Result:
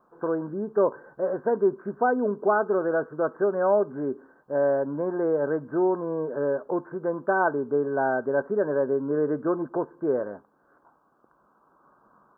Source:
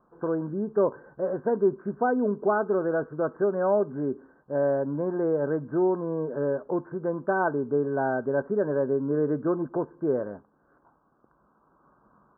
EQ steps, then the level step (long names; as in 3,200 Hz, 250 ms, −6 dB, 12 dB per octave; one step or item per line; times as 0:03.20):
low-shelf EQ 220 Hz −11.5 dB
+3.5 dB